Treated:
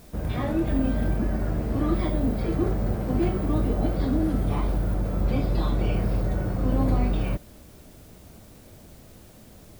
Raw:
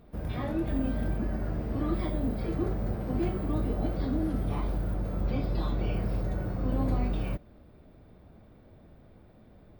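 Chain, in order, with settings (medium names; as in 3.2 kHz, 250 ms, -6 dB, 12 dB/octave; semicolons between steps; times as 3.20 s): added noise white -62 dBFS; trim +5.5 dB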